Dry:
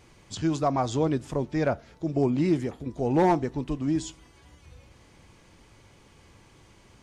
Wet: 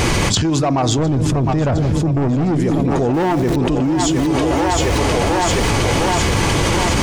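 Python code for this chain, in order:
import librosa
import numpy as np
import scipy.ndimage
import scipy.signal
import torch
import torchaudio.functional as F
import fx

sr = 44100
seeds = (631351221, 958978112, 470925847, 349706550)

p1 = fx.zero_step(x, sr, step_db=-39.0, at=(3.14, 3.56))
p2 = fx.level_steps(p1, sr, step_db=12)
p3 = p1 + (p2 * librosa.db_to_amplitude(2.0))
p4 = fx.peak_eq(p3, sr, hz=93.0, db=12.5, octaves=2.8, at=(0.98, 2.57))
p5 = 10.0 ** (-15.5 / 20.0) * np.tanh(p4 / 10.0 ** (-15.5 / 20.0))
p6 = p5 + fx.echo_split(p5, sr, split_hz=440.0, low_ms=178, high_ms=709, feedback_pct=52, wet_db=-11, dry=0)
y = fx.env_flatten(p6, sr, amount_pct=100)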